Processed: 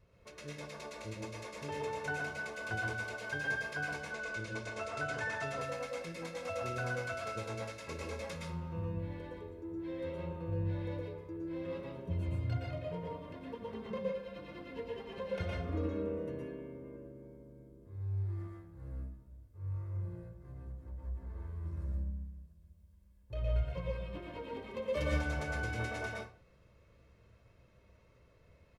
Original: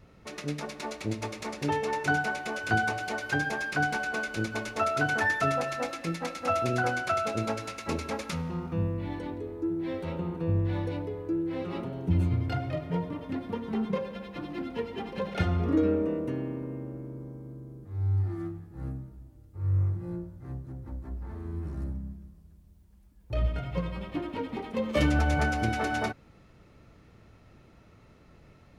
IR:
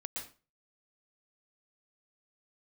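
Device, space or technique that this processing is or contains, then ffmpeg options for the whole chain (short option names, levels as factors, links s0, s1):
microphone above a desk: -filter_complex "[0:a]asettb=1/sr,asplit=3[s0][s1][s2];[s0]atrim=end=3.964[s3];[s1]atrim=start=3.96:end=5.48,asetpts=PTS-STARTPTS,afade=t=in:d=0.004:c=qsin,afade=t=out:st=1.516:d=0.004:c=qsin,lowpass=f=9600:w=0.5412,lowpass=f=9600:w=1.3066[s4];[s2]atrim=start=5.476[s5];[s3][s4]acrossfade=d=0.004:c1=hsin:c2=qsin[s6];[s6][s5]acrossfade=d=0.004:c1=qsin:c2=hsin,aecho=1:1:1.9:0.52[s7];[1:a]atrim=start_sample=2205[s8];[s7][s8]afir=irnorm=-1:irlink=0,volume=0.376"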